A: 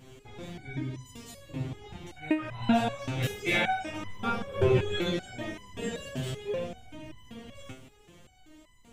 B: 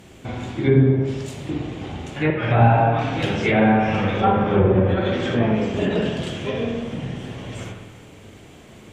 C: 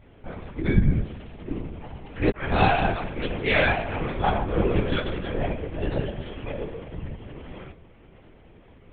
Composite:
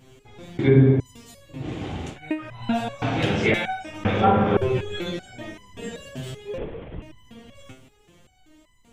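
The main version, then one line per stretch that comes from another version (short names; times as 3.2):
A
0.59–1 from B
1.64–2.14 from B, crossfade 0.10 s
3.02–3.54 from B
4.05–4.57 from B
6.58–7.02 from C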